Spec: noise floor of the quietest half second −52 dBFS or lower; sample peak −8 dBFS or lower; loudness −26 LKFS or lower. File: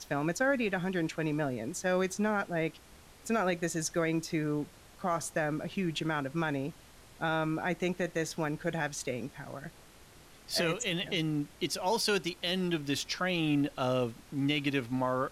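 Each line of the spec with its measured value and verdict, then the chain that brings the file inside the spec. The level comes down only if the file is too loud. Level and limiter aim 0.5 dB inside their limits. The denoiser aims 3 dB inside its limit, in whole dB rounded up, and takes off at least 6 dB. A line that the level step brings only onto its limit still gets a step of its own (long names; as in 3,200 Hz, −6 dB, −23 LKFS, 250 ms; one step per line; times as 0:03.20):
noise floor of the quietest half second −55 dBFS: in spec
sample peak −19.0 dBFS: in spec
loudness −32.5 LKFS: in spec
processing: no processing needed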